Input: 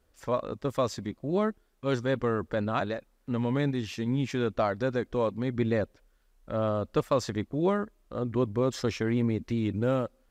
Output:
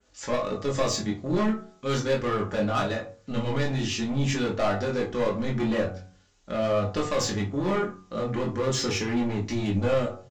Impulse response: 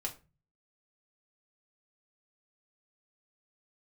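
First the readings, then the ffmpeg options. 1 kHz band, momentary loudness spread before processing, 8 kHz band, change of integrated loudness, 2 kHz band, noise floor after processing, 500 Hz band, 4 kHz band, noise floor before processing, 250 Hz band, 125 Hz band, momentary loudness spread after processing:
+2.5 dB, 5 LU, +12.0 dB, +2.5 dB, +4.5 dB, -59 dBFS, +2.0 dB, +8.5 dB, -68 dBFS, +1.5 dB, +2.0 dB, 5 LU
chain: -filter_complex "[0:a]highpass=58,bandreject=f=92.83:t=h:w=4,bandreject=f=185.66:t=h:w=4,bandreject=f=278.49:t=h:w=4,bandreject=f=371.32:t=h:w=4,bandreject=f=464.15:t=h:w=4,bandreject=f=556.98:t=h:w=4,bandreject=f=649.81:t=h:w=4,bandreject=f=742.64:t=h:w=4,bandreject=f=835.47:t=h:w=4,bandreject=f=928.3:t=h:w=4,bandreject=f=1021.13:t=h:w=4,bandreject=f=1113.96:t=h:w=4,bandreject=f=1206.79:t=h:w=4,bandreject=f=1299.62:t=h:w=4,bandreject=f=1392.45:t=h:w=4,bandreject=f=1485.28:t=h:w=4,bandreject=f=1578.11:t=h:w=4,adynamicequalizer=threshold=0.002:dfrequency=4900:dqfactor=1.1:tfrequency=4900:tqfactor=1.1:attack=5:release=100:ratio=0.375:range=3:mode=cutabove:tftype=bell,crystalizer=i=3.5:c=0,aresample=16000,asoftclip=type=tanh:threshold=0.0562,aresample=44100,flanger=delay=20:depth=2.9:speed=0.42,asplit=2[s0][s1];[s1]aeval=exprs='0.0237*(abs(mod(val(0)/0.0237+3,4)-2)-1)':c=same,volume=0.316[s2];[s0][s2]amix=inputs=2:normalize=0[s3];[1:a]atrim=start_sample=2205[s4];[s3][s4]afir=irnorm=-1:irlink=0,volume=2.11"

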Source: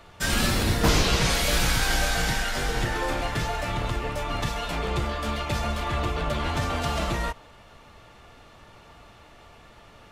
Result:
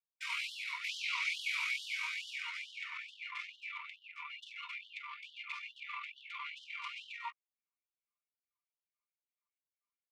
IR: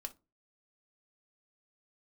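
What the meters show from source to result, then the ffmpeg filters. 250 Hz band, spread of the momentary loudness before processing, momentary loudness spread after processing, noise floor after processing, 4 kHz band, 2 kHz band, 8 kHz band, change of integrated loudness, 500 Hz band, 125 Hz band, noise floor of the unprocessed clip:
under -40 dB, 8 LU, 12 LU, under -85 dBFS, -13.5 dB, -9.5 dB, -22.5 dB, -14.0 dB, under -40 dB, under -40 dB, -51 dBFS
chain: -filter_complex "[0:a]anlmdn=25.1,tremolo=f=42:d=0.261,asplit=3[s0][s1][s2];[s0]bandpass=f=300:t=q:w=8,volume=1[s3];[s1]bandpass=f=870:t=q:w=8,volume=0.501[s4];[s2]bandpass=f=2240:t=q:w=8,volume=0.355[s5];[s3][s4][s5]amix=inputs=3:normalize=0,afftfilt=real='re*gte(b*sr/1024,930*pow(2900/930,0.5+0.5*sin(2*PI*2.3*pts/sr)))':imag='im*gte(b*sr/1024,930*pow(2900/930,0.5+0.5*sin(2*PI*2.3*pts/sr)))':win_size=1024:overlap=0.75,volume=3.35"

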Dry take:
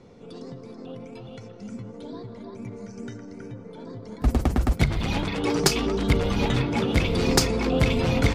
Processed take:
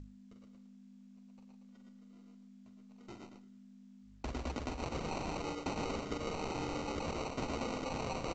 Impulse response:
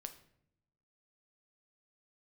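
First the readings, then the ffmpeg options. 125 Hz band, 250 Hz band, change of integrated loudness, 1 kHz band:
-20.5 dB, -16.0 dB, -16.0 dB, -9.0 dB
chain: -filter_complex "[0:a]aexciter=amount=5.1:drive=8.7:freq=2600,agate=range=0.002:threshold=0.0355:ratio=16:detection=peak,bass=f=250:g=-10,treble=f=4000:g=-14,aecho=1:1:45|49|96|123|154:0.422|0.106|0.141|0.631|0.224,asplit=2[s0][s1];[1:a]atrim=start_sample=2205,adelay=110[s2];[s1][s2]afir=irnorm=-1:irlink=0,volume=0.794[s3];[s0][s3]amix=inputs=2:normalize=0,dynaudnorm=f=120:g=17:m=2.51,acrusher=samples=26:mix=1:aa=0.000001,aeval=exprs='val(0)+0.0112*(sin(2*PI*50*n/s)+sin(2*PI*2*50*n/s)/2+sin(2*PI*3*50*n/s)/3+sin(2*PI*4*50*n/s)/4+sin(2*PI*5*50*n/s)/5)':c=same,areverse,acompressor=threshold=0.0355:ratio=16,areverse,bandreject=f=50:t=h:w=6,bandreject=f=100:t=h:w=6,bandreject=f=150:t=h:w=6,volume=0.531" -ar 16000 -c:a pcm_mulaw

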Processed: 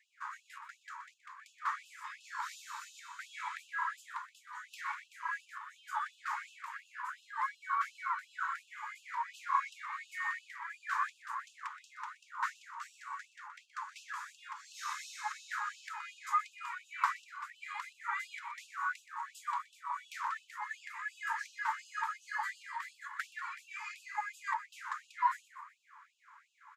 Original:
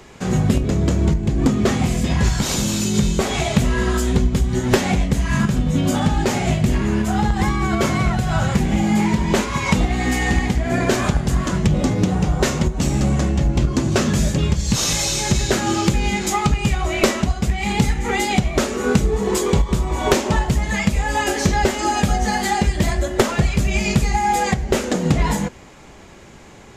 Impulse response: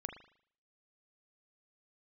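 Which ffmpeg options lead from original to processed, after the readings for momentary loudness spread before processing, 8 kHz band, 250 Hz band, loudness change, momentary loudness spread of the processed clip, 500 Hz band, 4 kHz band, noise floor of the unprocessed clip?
2 LU, -28.0 dB, under -40 dB, -20.5 dB, 13 LU, under -40 dB, -26.0 dB, -42 dBFS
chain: -filter_complex "[0:a]firequalizer=gain_entry='entry(1100,0);entry(2800,-24);entry(6000,-27)':delay=0.05:min_phase=1,asplit=6[s0][s1][s2][s3][s4][s5];[s1]adelay=123,afreqshift=59,volume=0.224[s6];[s2]adelay=246,afreqshift=118,volume=0.105[s7];[s3]adelay=369,afreqshift=177,volume=0.0495[s8];[s4]adelay=492,afreqshift=236,volume=0.0232[s9];[s5]adelay=615,afreqshift=295,volume=0.011[s10];[s0][s6][s7][s8][s9][s10]amix=inputs=6:normalize=0,afftfilt=real='re*gte(b*sr/1024,850*pow(2600/850,0.5+0.5*sin(2*PI*2.8*pts/sr)))':imag='im*gte(b*sr/1024,850*pow(2600/850,0.5+0.5*sin(2*PI*2.8*pts/sr)))':win_size=1024:overlap=0.75,volume=0.841"

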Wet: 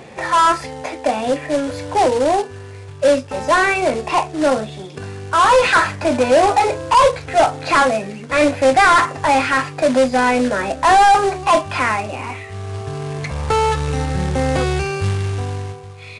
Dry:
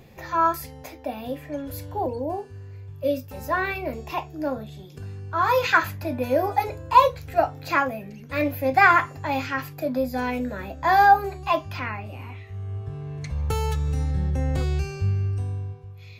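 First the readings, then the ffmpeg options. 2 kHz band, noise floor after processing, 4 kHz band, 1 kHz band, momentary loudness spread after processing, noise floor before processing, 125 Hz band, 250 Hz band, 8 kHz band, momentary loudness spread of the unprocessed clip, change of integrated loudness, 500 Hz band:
+6.5 dB, -35 dBFS, +12.5 dB, +7.5 dB, 15 LU, -43 dBFS, +3.0 dB, +8.5 dB, no reading, 17 LU, +8.0 dB, +10.5 dB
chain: -filter_complex "[0:a]asplit=2[s0][s1];[s1]highpass=f=720:p=1,volume=20,asoftclip=type=tanh:threshold=0.708[s2];[s0][s2]amix=inputs=2:normalize=0,lowpass=f=1400:p=1,volume=0.501,acrusher=bits=3:mode=log:mix=0:aa=0.000001,aresample=22050,aresample=44100"

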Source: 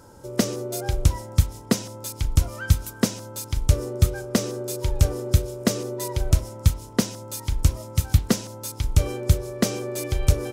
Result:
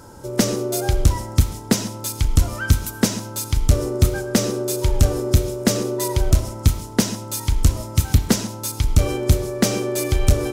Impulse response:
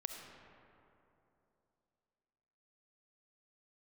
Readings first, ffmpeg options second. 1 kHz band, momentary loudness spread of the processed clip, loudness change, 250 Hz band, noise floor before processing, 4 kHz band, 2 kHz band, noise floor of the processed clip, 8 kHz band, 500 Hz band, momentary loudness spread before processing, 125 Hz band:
+5.5 dB, 4 LU, +4.0 dB, +5.0 dB, -42 dBFS, +5.0 dB, +5.5 dB, -35 dBFS, +5.5 dB, +5.5 dB, 7 LU, +3.0 dB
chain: -filter_complex "[0:a]asoftclip=type=tanh:threshold=0.237,equalizer=f=520:t=o:w=0.28:g=-3.5,asplit=2[s0][s1];[1:a]atrim=start_sample=2205,atrim=end_sample=6615[s2];[s1][s2]afir=irnorm=-1:irlink=0,volume=1.58[s3];[s0][s3]amix=inputs=2:normalize=0"

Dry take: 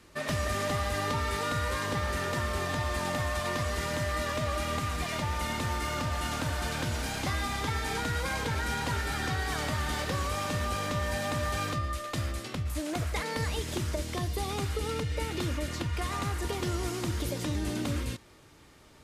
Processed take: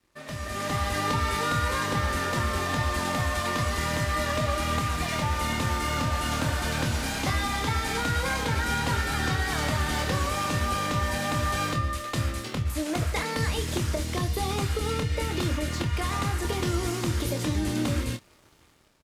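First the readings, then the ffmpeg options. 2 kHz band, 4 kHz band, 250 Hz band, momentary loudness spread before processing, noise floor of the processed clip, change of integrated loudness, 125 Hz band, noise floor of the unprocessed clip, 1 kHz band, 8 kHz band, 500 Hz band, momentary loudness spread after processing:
+4.0 dB, +4.5 dB, +5.0 dB, 3 LU, -57 dBFS, +4.5 dB, +4.5 dB, -55 dBFS, +4.5 dB, +4.0 dB, +2.5 dB, 3 LU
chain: -filter_complex "[0:a]aeval=exprs='sgn(val(0))*max(abs(val(0))-0.00126,0)':c=same,dynaudnorm=f=240:g=5:m=3.98,asplit=2[s0][s1];[s1]adelay=26,volume=0.422[s2];[s0][s2]amix=inputs=2:normalize=0,volume=0.398"

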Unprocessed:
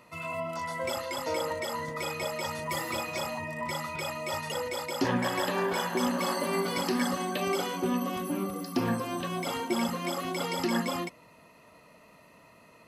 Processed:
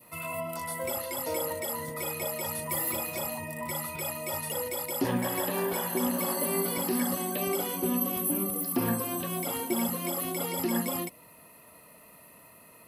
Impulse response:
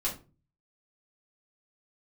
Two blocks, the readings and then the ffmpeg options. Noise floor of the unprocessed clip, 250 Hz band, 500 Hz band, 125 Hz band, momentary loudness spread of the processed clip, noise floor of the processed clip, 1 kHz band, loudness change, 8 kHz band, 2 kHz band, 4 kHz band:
-57 dBFS, 0.0 dB, -0.5 dB, 0.0 dB, 6 LU, -54 dBFS, -3.0 dB, +1.0 dB, +6.5 dB, -4.0 dB, -4.0 dB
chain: -filter_complex "[0:a]adynamicequalizer=threshold=0.00562:dfrequency=1400:dqfactor=1.1:tfrequency=1400:tqfactor=1.1:attack=5:release=100:ratio=0.375:range=3:mode=cutabove:tftype=bell,acrossover=split=2600[s0][s1];[s1]alimiter=level_in=3.76:limit=0.0631:level=0:latency=1:release=67,volume=0.266[s2];[s0][s2]amix=inputs=2:normalize=0,aexciter=amount=8:drive=5.2:freq=8900"

